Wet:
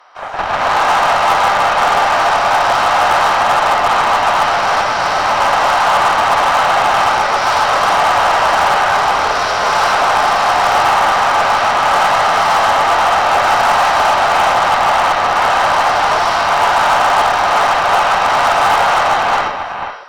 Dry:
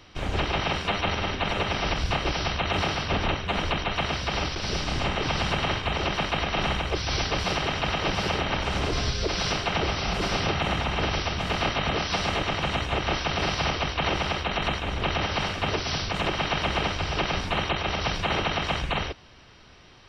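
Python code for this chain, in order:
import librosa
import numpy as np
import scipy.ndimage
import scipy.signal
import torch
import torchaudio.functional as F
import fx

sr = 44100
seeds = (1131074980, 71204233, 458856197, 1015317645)

p1 = scipy.signal.sosfilt(scipy.signal.cheby1(3, 1.0, 700.0, 'highpass', fs=sr, output='sos'), x)
p2 = fx.high_shelf_res(p1, sr, hz=1900.0, db=-11.5, q=1.5)
p3 = p2 + 10.0 ** (-9.5 / 20.0) * np.pad(p2, (int(491 * sr / 1000.0), 0))[:len(p2)]
p4 = fx.rev_gated(p3, sr, seeds[0], gate_ms=450, shape='rising', drr_db=-8.0)
p5 = fx.cheby_harmonics(p4, sr, harmonics=(6, 8), levels_db=(-17, -30), full_scale_db=-14.5)
p6 = 10.0 ** (-21.0 / 20.0) * (np.abs((p5 / 10.0 ** (-21.0 / 20.0) + 3.0) % 4.0 - 2.0) - 1.0)
p7 = p5 + F.gain(torch.from_numpy(p6), -8.5).numpy()
y = F.gain(torch.from_numpy(p7), 8.5).numpy()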